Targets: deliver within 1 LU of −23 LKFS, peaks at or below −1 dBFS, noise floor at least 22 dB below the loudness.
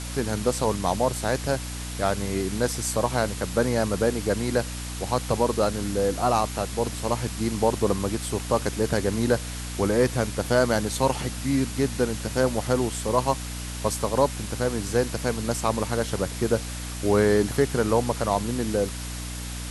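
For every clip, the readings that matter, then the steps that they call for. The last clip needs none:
mains hum 60 Hz; hum harmonics up to 300 Hz; level of the hum −32 dBFS; background noise floor −34 dBFS; target noise floor −48 dBFS; integrated loudness −25.5 LKFS; sample peak −7.0 dBFS; target loudness −23.0 LKFS
→ mains-hum notches 60/120/180/240/300 Hz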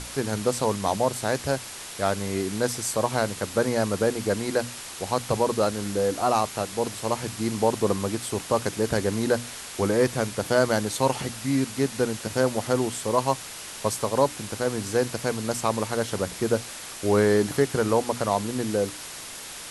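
mains hum none found; background noise floor −39 dBFS; target noise floor −48 dBFS
→ noise reduction from a noise print 9 dB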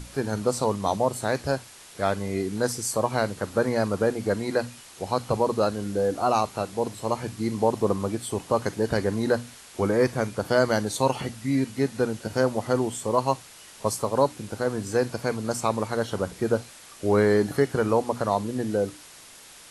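background noise floor −48 dBFS; integrated loudness −26.0 LKFS; sample peak −7.5 dBFS; target loudness −23.0 LKFS
→ level +3 dB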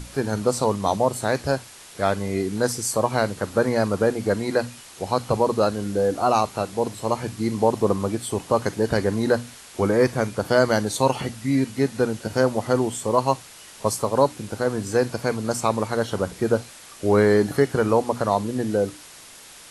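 integrated loudness −23.0 LKFS; sample peak −4.5 dBFS; background noise floor −45 dBFS

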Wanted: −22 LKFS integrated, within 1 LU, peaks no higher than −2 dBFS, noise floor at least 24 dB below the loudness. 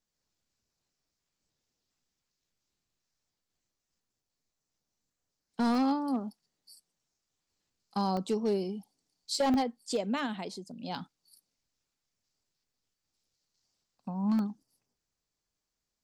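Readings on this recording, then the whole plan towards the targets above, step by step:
share of clipped samples 0.5%; peaks flattened at −22.5 dBFS; number of dropouts 5; longest dropout 1.2 ms; integrated loudness −32.0 LKFS; sample peak −22.5 dBFS; target loudness −22.0 LKFS
→ clipped peaks rebuilt −22.5 dBFS
repair the gap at 0:05.75/0:08.17/0:09.54/0:10.95/0:14.39, 1.2 ms
level +10 dB

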